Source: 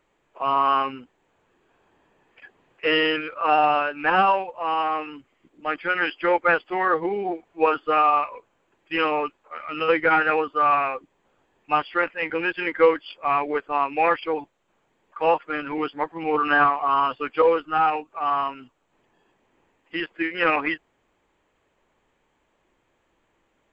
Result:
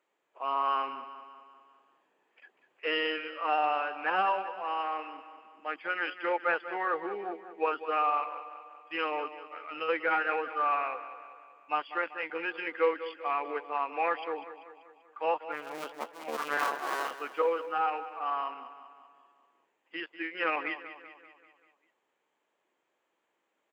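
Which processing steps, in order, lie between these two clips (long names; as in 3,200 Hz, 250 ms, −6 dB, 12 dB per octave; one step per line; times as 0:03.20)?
0:15.52–0:17.11: sub-harmonics by changed cycles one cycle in 2, muted
high-pass filter 350 Hz 12 dB per octave
repeating echo 194 ms, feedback 54%, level −13 dB
level −9 dB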